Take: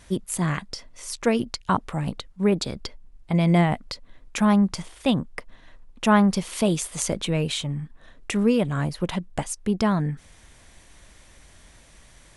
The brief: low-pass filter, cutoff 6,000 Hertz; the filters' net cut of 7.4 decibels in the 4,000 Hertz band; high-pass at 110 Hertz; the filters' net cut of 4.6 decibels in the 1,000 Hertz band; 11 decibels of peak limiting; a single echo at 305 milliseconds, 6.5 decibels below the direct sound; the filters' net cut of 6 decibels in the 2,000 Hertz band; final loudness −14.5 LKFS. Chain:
high-pass filter 110 Hz
low-pass filter 6,000 Hz
parametric band 1,000 Hz −4.5 dB
parametric band 2,000 Hz −4.5 dB
parametric band 4,000 Hz −7 dB
brickwall limiter −21.5 dBFS
single-tap delay 305 ms −6.5 dB
level +16.5 dB

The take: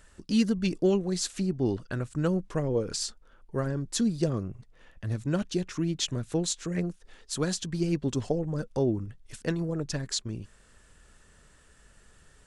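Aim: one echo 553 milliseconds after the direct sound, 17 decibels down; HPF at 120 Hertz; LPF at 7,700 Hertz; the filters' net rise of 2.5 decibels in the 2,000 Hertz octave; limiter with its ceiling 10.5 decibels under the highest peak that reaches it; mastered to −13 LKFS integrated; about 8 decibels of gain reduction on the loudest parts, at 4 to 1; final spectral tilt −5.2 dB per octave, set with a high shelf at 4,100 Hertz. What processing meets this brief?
high-pass filter 120 Hz
low-pass filter 7,700 Hz
parametric band 2,000 Hz +4.5 dB
high-shelf EQ 4,100 Hz −5 dB
downward compressor 4 to 1, threshold −30 dBFS
brickwall limiter −29 dBFS
single-tap delay 553 ms −17 dB
level +25.5 dB

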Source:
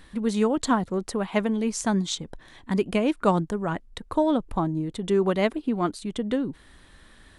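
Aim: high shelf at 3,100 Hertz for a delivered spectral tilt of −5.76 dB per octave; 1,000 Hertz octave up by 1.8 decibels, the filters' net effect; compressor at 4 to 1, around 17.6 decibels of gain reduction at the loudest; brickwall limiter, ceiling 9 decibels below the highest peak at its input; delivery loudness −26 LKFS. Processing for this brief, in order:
parametric band 1,000 Hz +3 dB
high-shelf EQ 3,100 Hz −7.5 dB
downward compressor 4 to 1, threshold −38 dBFS
level +16 dB
brickwall limiter −15.5 dBFS

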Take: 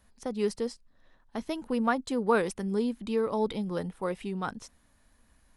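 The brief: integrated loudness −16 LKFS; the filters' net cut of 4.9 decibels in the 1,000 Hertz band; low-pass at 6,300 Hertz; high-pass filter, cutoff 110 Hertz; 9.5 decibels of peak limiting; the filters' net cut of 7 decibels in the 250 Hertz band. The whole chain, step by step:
high-pass filter 110 Hz
low-pass filter 6,300 Hz
parametric band 250 Hz −8 dB
parametric band 1,000 Hz −6 dB
level +22 dB
brickwall limiter −5 dBFS

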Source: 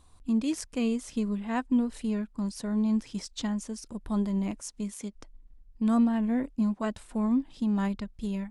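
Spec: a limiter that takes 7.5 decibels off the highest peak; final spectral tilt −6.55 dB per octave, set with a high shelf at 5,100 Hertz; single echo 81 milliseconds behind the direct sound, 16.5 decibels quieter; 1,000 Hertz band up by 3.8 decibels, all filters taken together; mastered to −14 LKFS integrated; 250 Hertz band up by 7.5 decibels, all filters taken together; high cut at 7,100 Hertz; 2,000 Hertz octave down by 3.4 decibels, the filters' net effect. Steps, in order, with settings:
low-pass filter 7,100 Hz
parametric band 250 Hz +8.5 dB
parametric band 1,000 Hz +5.5 dB
parametric band 2,000 Hz −7 dB
high-shelf EQ 5,100 Hz +3.5 dB
brickwall limiter −15.5 dBFS
single-tap delay 81 ms −16.5 dB
level +10.5 dB

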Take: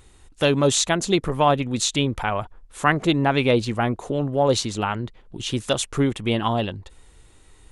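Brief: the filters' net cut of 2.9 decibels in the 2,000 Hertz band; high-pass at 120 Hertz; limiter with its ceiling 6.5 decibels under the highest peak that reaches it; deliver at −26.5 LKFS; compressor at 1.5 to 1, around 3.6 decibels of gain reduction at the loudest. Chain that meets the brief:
high-pass filter 120 Hz
parametric band 2,000 Hz −4 dB
downward compressor 1.5 to 1, threshold −24 dBFS
level +1 dB
brickwall limiter −14 dBFS

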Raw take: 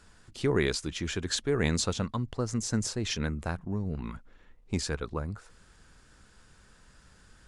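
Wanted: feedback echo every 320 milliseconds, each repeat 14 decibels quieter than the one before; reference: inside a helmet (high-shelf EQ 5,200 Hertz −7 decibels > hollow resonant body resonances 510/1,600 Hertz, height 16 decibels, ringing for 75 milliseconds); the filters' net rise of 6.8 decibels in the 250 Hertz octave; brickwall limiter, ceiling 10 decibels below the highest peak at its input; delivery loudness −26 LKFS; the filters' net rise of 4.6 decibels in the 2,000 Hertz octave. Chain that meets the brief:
parametric band 250 Hz +8.5 dB
parametric band 2,000 Hz +6.5 dB
brickwall limiter −18.5 dBFS
high-shelf EQ 5,200 Hz −7 dB
repeating echo 320 ms, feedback 20%, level −14 dB
hollow resonant body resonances 510/1,600 Hz, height 16 dB, ringing for 75 ms
level +2.5 dB

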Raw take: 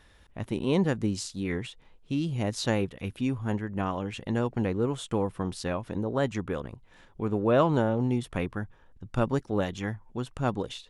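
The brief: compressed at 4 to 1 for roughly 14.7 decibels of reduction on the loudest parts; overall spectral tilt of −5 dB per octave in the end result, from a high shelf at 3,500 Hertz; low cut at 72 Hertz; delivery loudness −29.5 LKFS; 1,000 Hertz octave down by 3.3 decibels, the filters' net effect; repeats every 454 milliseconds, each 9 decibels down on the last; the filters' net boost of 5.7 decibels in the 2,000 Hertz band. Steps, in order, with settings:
high-pass filter 72 Hz
parametric band 1,000 Hz −7 dB
parametric band 2,000 Hz +8.5 dB
high-shelf EQ 3,500 Hz +4 dB
downward compressor 4 to 1, threshold −38 dBFS
repeating echo 454 ms, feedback 35%, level −9 dB
level +11 dB

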